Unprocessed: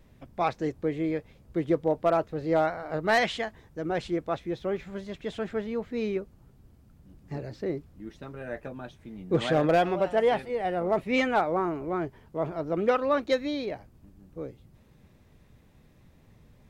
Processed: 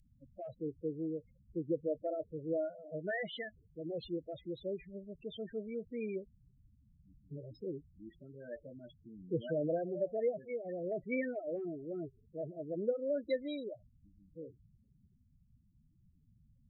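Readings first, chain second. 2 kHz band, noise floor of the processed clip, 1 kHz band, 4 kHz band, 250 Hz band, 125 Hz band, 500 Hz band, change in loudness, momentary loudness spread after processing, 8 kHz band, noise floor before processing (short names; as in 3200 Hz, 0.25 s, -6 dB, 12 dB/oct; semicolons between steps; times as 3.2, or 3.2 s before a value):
-14.5 dB, -69 dBFS, -22.5 dB, -14.5 dB, -10.0 dB, -11.0 dB, -10.0 dB, -11.0 dB, 16 LU, n/a, -58 dBFS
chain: loudest bins only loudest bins 8; treble ducked by the level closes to 1200 Hz, closed at -22.5 dBFS; elliptic band-stop 620–1600 Hz, stop band 40 dB; pre-emphasis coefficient 0.9; gain +10.5 dB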